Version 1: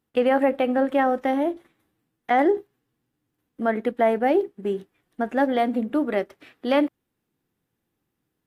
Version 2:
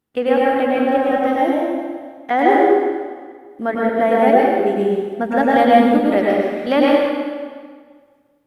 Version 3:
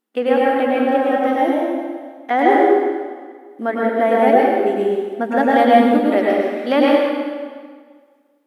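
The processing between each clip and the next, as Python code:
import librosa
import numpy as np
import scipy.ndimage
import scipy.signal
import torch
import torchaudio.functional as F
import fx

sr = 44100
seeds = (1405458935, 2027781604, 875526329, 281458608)

y1 = fx.rider(x, sr, range_db=10, speed_s=2.0)
y1 = fx.chopper(y1, sr, hz=1.8, depth_pct=60, duty_pct=75)
y1 = fx.rev_plate(y1, sr, seeds[0], rt60_s=1.7, hf_ratio=0.85, predelay_ms=90, drr_db=-5.0)
y1 = y1 * librosa.db_to_amplitude(1.5)
y2 = fx.brickwall_highpass(y1, sr, low_hz=200.0)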